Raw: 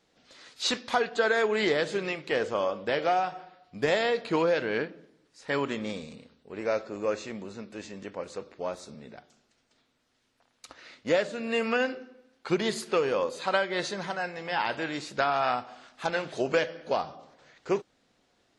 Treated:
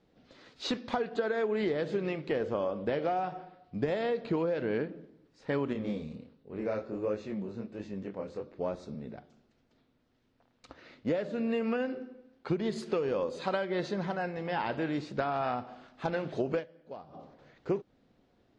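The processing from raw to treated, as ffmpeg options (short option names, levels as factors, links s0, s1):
-filter_complex "[0:a]asettb=1/sr,asplit=3[s0][s1][s2];[s0]atrim=end=5.734[s3];[s1]atrim=start=5.73:end=8.54,asetpts=PTS-STARTPTS,afade=t=in:d=0.004:c=qsin,afade=t=out:st=2.806:d=0.004:c=qsin,flanger=delay=19:depth=7.8:speed=1.4[s4];[s2]atrim=start=8.536[s5];[s3][s4]acrossfade=d=0.004:c1=hsin:c2=qsin[s6];[s6][s5]acrossfade=d=0.004:c1=qsin:c2=hsin,asettb=1/sr,asplit=3[s7][s8][s9];[s7]atrim=end=12.724[s10];[s8]atrim=start=12.72:end=13.65,asetpts=PTS-STARTPTS,afade=t=in:d=0.004:c=qsin,afade=t=out:st=0.926:d=0.004:c=qsin,highshelf=f=4700:g=8[s11];[s9]atrim=start=13.646[s12];[s10][s11]acrossfade=d=0.004:c1=hsin:c2=qsin[s13];[s13][s12]acrossfade=d=0.004:c1=qsin:c2=hsin,asplit=3[s14][s15][s16];[s14]atrim=end=16.85,asetpts=PTS-STARTPTS,afade=t=out:st=16.59:d=0.26:c=exp:silence=0.149624[s17];[s15]atrim=start=16.85:end=16.89,asetpts=PTS-STARTPTS,volume=0.15[s18];[s16]atrim=start=16.89,asetpts=PTS-STARTPTS,afade=t=in:d=0.26:c=exp:silence=0.149624[s19];[s17][s18][s19]concat=n=3:v=0:a=1,lowpass=4800,tiltshelf=f=630:g=7,acompressor=threshold=0.0447:ratio=6"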